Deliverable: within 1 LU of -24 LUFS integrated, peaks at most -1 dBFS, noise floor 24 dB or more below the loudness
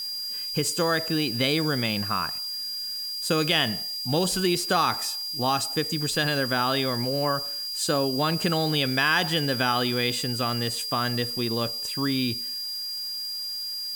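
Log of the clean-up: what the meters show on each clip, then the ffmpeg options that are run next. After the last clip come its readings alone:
steady tone 4.8 kHz; tone level -30 dBFS; noise floor -33 dBFS; noise floor target -49 dBFS; loudness -25.0 LUFS; peak level -9.0 dBFS; loudness target -24.0 LUFS
-> -af "bandreject=f=4800:w=30"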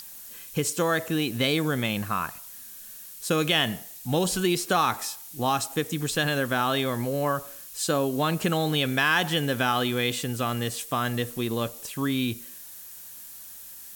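steady tone not found; noise floor -44 dBFS; noise floor target -50 dBFS
-> -af "afftdn=nr=6:nf=-44"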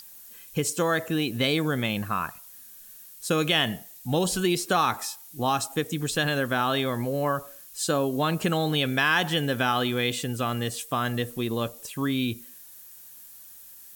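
noise floor -48 dBFS; noise floor target -51 dBFS
-> -af "afftdn=nr=6:nf=-48"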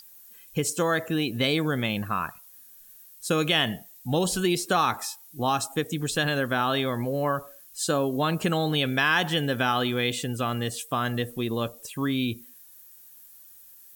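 noise floor -51 dBFS; loudness -26.5 LUFS; peak level -9.0 dBFS; loudness target -24.0 LUFS
-> -af "volume=1.33"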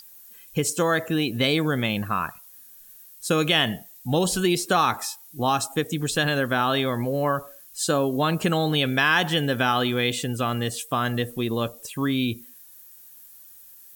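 loudness -24.0 LUFS; peak level -6.5 dBFS; noise floor -48 dBFS

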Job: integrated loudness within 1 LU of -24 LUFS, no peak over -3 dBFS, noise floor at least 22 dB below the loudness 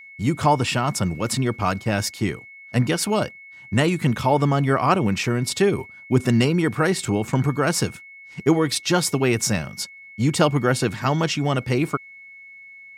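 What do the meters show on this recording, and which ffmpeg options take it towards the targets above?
steady tone 2.2 kHz; tone level -41 dBFS; loudness -22.0 LUFS; peak level -5.0 dBFS; loudness target -24.0 LUFS
-> -af "bandreject=f=2200:w=30"
-af "volume=0.794"

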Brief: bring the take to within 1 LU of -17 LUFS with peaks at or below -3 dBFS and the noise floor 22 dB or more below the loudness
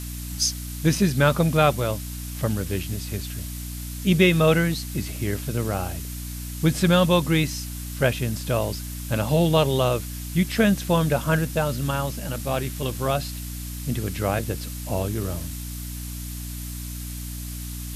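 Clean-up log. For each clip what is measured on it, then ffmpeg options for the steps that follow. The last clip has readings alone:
hum 60 Hz; highest harmonic 300 Hz; hum level -31 dBFS; noise floor -33 dBFS; noise floor target -47 dBFS; loudness -24.5 LUFS; peak level -5.5 dBFS; loudness target -17.0 LUFS
-> -af "bandreject=f=60:t=h:w=4,bandreject=f=120:t=h:w=4,bandreject=f=180:t=h:w=4,bandreject=f=240:t=h:w=4,bandreject=f=300:t=h:w=4"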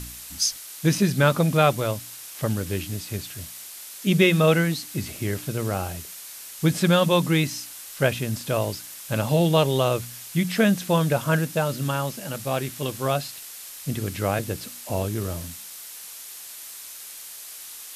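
hum not found; noise floor -40 dBFS; noise floor target -46 dBFS
-> -af "afftdn=nr=6:nf=-40"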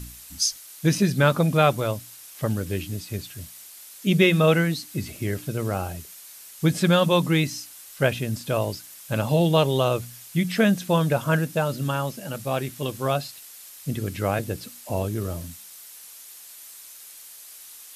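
noise floor -45 dBFS; noise floor target -46 dBFS
-> -af "afftdn=nr=6:nf=-45"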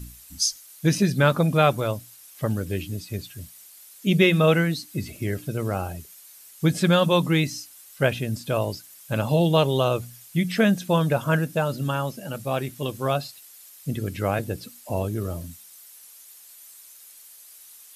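noise floor -48 dBFS; loudness -24.0 LUFS; peak level -6.0 dBFS; loudness target -17.0 LUFS
-> -af "volume=2.24,alimiter=limit=0.708:level=0:latency=1"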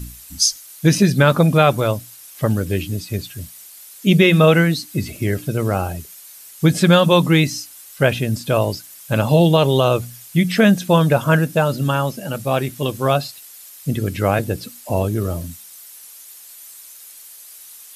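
loudness -17.5 LUFS; peak level -3.0 dBFS; noise floor -41 dBFS

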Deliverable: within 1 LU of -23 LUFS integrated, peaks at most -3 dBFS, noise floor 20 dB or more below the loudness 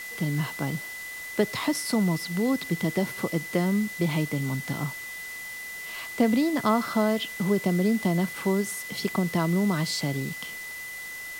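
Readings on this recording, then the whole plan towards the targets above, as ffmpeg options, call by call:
steady tone 2 kHz; tone level -36 dBFS; noise floor -38 dBFS; noise floor target -48 dBFS; loudness -27.5 LUFS; peak level -9.5 dBFS; loudness target -23.0 LUFS
-> -af "bandreject=f=2000:w=30"
-af "afftdn=nr=10:nf=-38"
-af "volume=1.68"

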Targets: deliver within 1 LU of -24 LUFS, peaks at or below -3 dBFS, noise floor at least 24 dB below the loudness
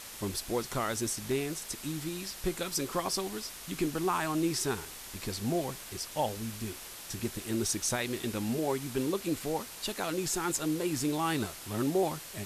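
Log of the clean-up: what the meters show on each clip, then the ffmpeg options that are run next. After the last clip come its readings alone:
noise floor -46 dBFS; noise floor target -57 dBFS; loudness -33.0 LUFS; peak level -18.5 dBFS; loudness target -24.0 LUFS
-> -af "afftdn=nr=11:nf=-46"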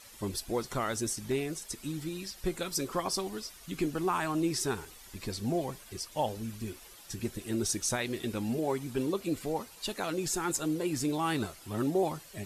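noise floor -52 dBFS; noise floor target -58 dBFS
-> -af "afftdn=nr=6:nf=-52"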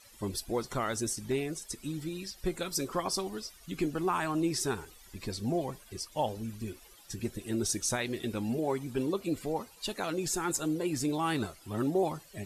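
noise floor -56 dBFS; noise floor target -58 dBFS
-> -af "afftdn=nr=6:nf=-56"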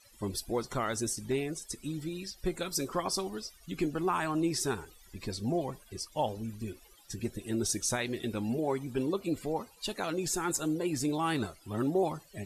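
noise floor -59 dBFS; loudness -33.5 LUFS; peak level -19.0 dBFS; loudness target -24.0 LUFS
-> -af "volume=2.99"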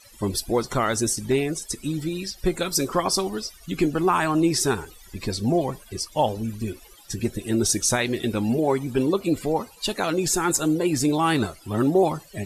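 loudness -24.0 LUFS; peak level -9.0 dBFS; noise floor -49 dBFS

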